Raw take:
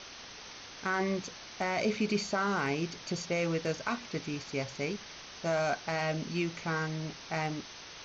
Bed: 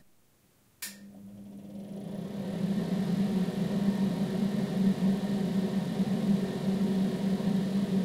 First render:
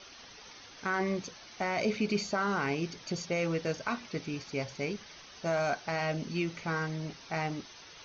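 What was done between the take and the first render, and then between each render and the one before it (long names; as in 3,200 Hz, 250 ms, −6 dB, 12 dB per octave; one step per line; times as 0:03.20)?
broadband denoise 8 dB, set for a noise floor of −48 dBFS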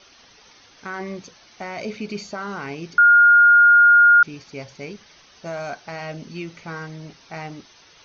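0:02.98–0:04.23: beep over 1,420 Hz −8.5 dBFS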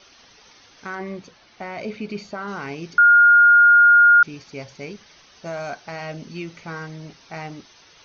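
0:00.95–0:02.48: high-frequency loss of the air 120 metres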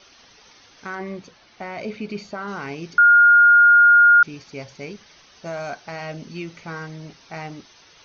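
no processing that can be heard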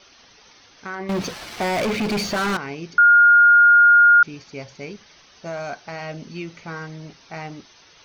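0:01.09–0:02.57: leveller curve on the samples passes 5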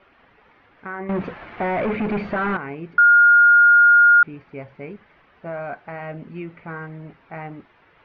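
low-pass filter 2,200 Hz 24 dB per octave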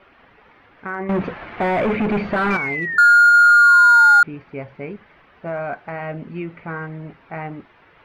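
0:02.50–0:04.21: sound drawn into the spectrogram fall 800–2,400 Hz −29 dBFS
in parallel at −5 dB: hard clipping −22 dBFS, distortion −4 dB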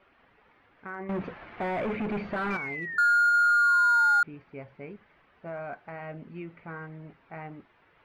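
level −11 dB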